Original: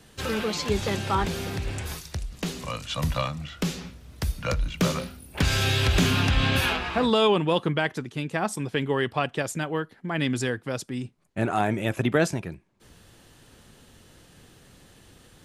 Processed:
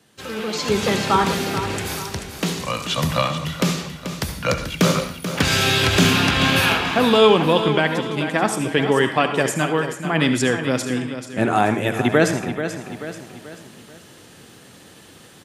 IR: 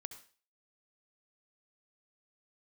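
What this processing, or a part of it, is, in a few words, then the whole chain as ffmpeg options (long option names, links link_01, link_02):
far laptop microphone: -filter_complex "[0:a]aecho=1:1:435|870|1305|1740:0.316|0.133|0.0558|0.0234[link_01];[1:a]atrim=start_sample=2205[link_02];[link_01][link_02]afir=irnorm=-1:irlink=0,highpass=140,dynaudnorm=framelen=170:gausssize=7:maxgain=11.5dB,volume=1dB"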